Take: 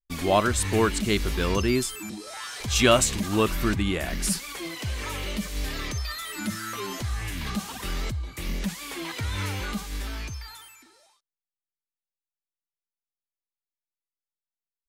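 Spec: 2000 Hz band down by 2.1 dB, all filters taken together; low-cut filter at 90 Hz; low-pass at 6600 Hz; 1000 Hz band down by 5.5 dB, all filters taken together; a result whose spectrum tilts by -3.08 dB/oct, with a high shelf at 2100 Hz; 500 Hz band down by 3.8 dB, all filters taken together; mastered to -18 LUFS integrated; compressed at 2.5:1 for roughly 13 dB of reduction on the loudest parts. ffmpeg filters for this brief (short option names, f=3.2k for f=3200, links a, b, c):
-af "highpass=90,lowpass=6.6k,equalizer=f=500:t=o:g=-3.5,equalizer=f=1k:t=o:g=-6.5,equalizer=f=2k:t=o:g=-5,highshelf=f=2.1k:g=6.5,acompressor=threshold=-36dB:ratio=2.5,volume=18dB"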